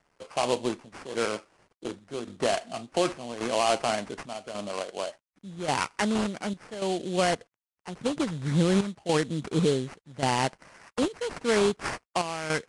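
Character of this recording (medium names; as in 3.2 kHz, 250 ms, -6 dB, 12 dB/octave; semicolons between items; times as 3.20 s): aliases and images of a low sample rate 3.7 kHz, jitter 20%; chopped level 0.88 Hz, depth 65%, duty 75%; a quantiser's noise floor 12-bit, dither none; Vorbis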